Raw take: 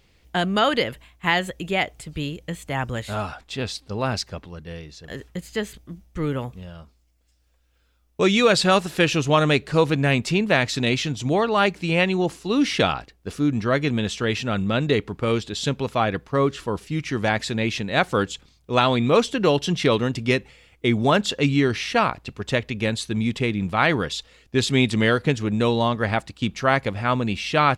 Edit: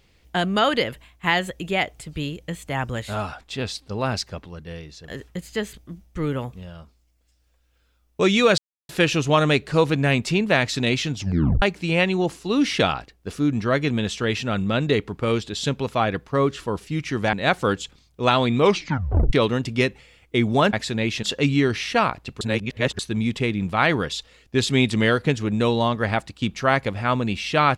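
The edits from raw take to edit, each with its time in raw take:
8.58–8.89 mute
11.16 tape stop 0.46 s
17.33–17.83 move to 21.23
19.1 tape stop 0.73 s
22.41–22.99 reverse

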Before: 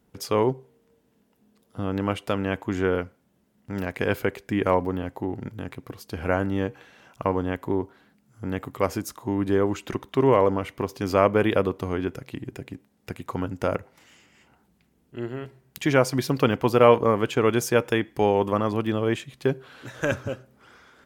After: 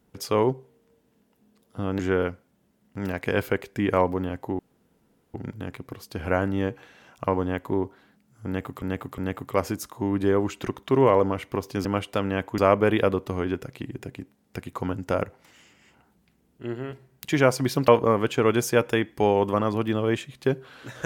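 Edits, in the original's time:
1.99–2.72 move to 11.11
5.32 insert room tone 0.75 s
8.44–8.8 loop, 3 plays
16.41–16.87 cut

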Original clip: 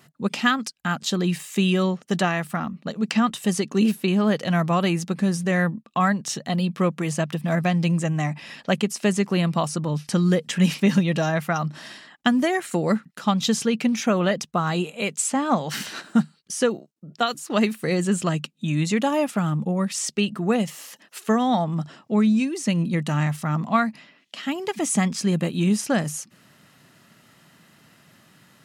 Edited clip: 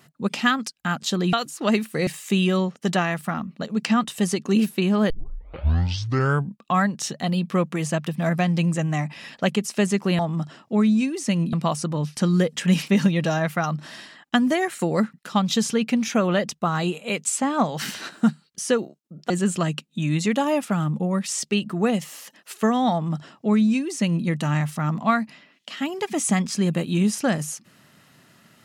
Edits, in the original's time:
4.36 tape start 1.53 s
17.22–17.96 move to 1.33
21.58–22.92 copy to 9.45

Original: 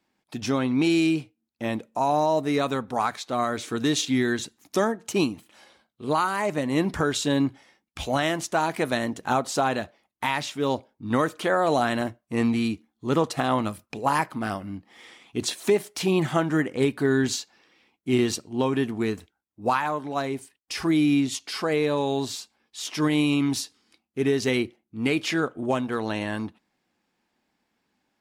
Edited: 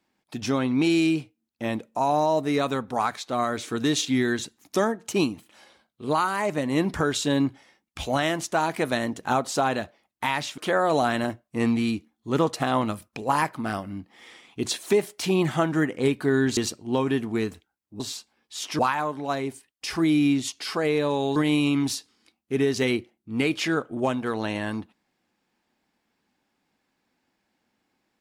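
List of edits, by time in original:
10.58–11.35 cut
17.34–18.23 cut
22.23–23.02 move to 19.66

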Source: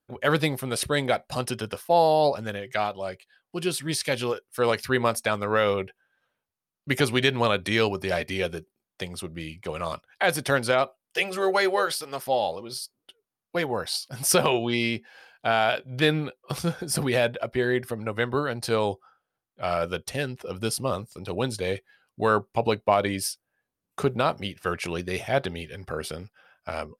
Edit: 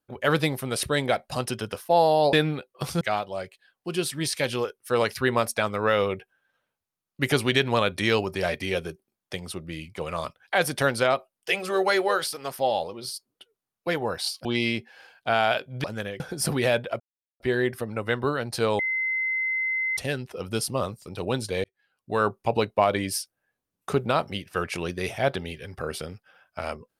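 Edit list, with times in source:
2.33–2.69 swap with 16.02–16.7
14.13–14.63 cut
17.5 insert silence 0.40 s
18.89–20.07 bleep 2060 Hz -23.5 dBFS
21.74–22.44 fade in

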